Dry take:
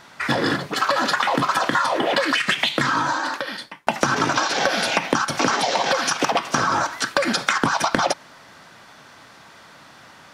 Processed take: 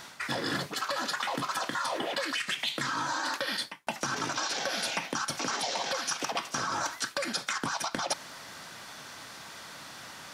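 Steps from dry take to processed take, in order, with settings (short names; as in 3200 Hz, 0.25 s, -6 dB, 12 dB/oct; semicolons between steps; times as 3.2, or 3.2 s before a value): high shelf 3800 Hz +10.5 dB; reverse; compressor 12:1, threshold -27 dBFS, peak gain reduction 16.5 dB; reverse; gain -1.5 dB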